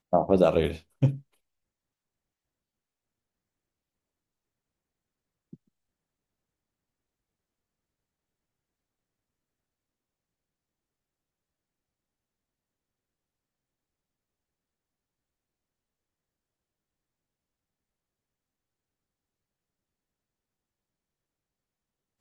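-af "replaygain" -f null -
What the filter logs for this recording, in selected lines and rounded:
track_gain = +54.2 dB
track_peak = 0.301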